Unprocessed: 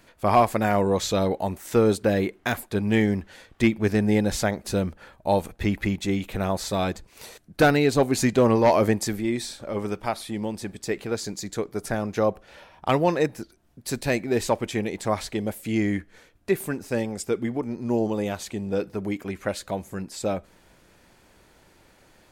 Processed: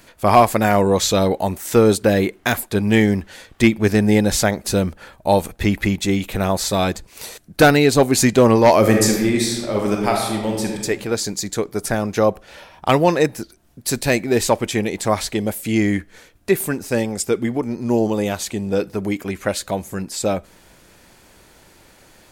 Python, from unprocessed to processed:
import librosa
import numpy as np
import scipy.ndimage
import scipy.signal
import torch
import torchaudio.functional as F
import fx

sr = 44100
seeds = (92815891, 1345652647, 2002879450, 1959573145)

y = fx.reverb_throw(x, sr, start_s=8.79, length_s=2.04, rt60_s=1.2, drr_db=0.5)
y = fx.high_shelf(y, sr, hz=4300.0, db=6.0)
y = y * 10.0 ** (6.0 / 20.0)